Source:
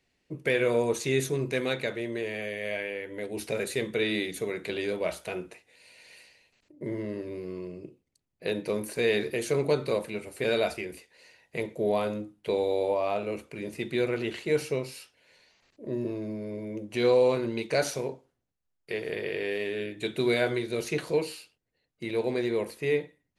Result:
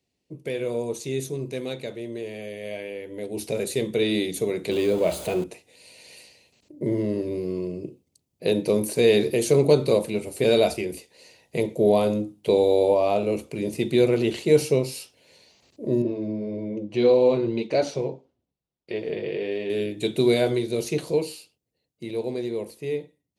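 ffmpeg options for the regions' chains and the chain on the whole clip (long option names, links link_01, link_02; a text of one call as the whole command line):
ffmpeg -i in.wav -filter_complex "[0:a]asettb=1/sr,asplit=3[link_01][link_02][link_03];[link_01]atrim=end=4.714[link_04];[link_02]atrim=start=4.71:end=5.44,asetpts=PTS-STARTPTS,afade=type=in:duration=0.004:curve=qsin,afade=type=out:start_time=0.726:duration=0.004:curve=qsin,aeval=exprs='val(0)+0.5*0.015*sgn(val(0))':channel_layout=same,highshelf=frequency=3700:gain=-6,bandreject=frequency=5500:width=6.9[link_05];[link_03]atrim=start=5.436[link_06];[link_04][link_05]acrossfade=duration=0.004:curve1=hsin:curve2=qsin[link_07];[link_07][link_06]acrossfade=duration=0.004:curve1=qsin:curve2=hsin,asettb=1/sr,asplit=3[link_08][link_09][link_10];[link_08]atrim=end=16.024[link_11];[link_09]atrim=start=16.02:end=19.7,asetpts=PTS-STARTPTS,afade=type=in:duration=0.004:curve=qsin,afade=type=out:start_time=3.676:duration=0.004:curve=qsin,lowpass=3700,flanger=delay=3.1:depth=3.1:regen=-36:speed=1.7:shape=sinusoidal[link_12];[link_10]atrim=start=19.696[link_13];[link_11][link_12]acrossfade=duration=0.004:curve1=hsin:curve2=qsin[link_14];[link_14][link_13]acrossfade=duration=0.004:curve1=qsin:curve2=hsin,dynaudnorm=framelen=680:gausssize=11:maxgain=13dB,highpass=63,equalizer=frequency=1600:width_type=o:width=1.4:gain=-13,volume=-1dB" out.wav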